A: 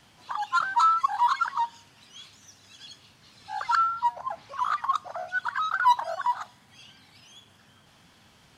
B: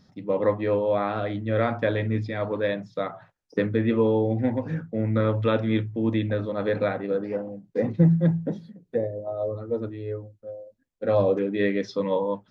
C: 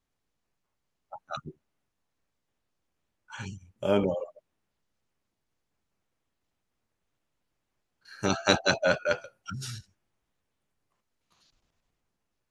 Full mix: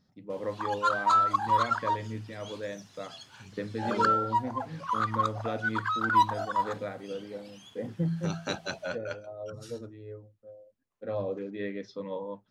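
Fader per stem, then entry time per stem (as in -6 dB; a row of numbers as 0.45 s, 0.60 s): -2.0 dB, -11.5 dB, -11.0 dB; 0.30 s, 0.00 s, 0.00 s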